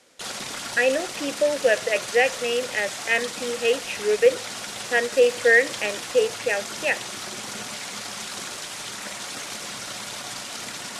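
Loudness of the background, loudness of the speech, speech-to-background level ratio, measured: −31.5 LKFS, −23.0 LKFS, 8.5 dB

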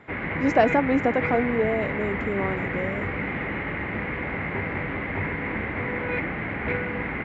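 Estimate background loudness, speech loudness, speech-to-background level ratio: −28.5 LKFS, −25.0 LKFS, 3.5 dB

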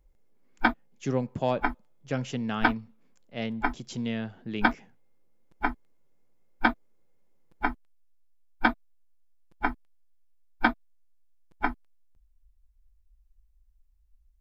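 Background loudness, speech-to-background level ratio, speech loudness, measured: −30.0 LKFS, −3.0 dB, −33.0 LKFS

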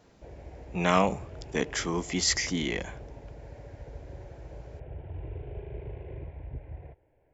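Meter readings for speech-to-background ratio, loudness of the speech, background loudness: 15.5 dB, −28.5 LKFS, −44.0 LKFS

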